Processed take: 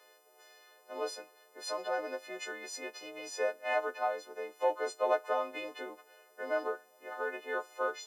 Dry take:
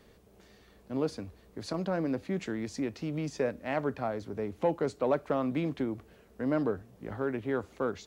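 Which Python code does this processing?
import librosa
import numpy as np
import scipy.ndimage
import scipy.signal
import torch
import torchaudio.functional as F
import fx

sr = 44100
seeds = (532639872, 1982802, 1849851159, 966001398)

y = fx.freq_snap(x, sr, grid_st=3)
y = scipy.signal.sosfilt(scipy.signal.butter(4, 510.0, 'highpass', fs=sr, output='sos'), y)
y = fx.high_shelf(y, sr, hz=2000.0, db=-9.5)
y = y * 10.0 ** (2.0 / 20.0)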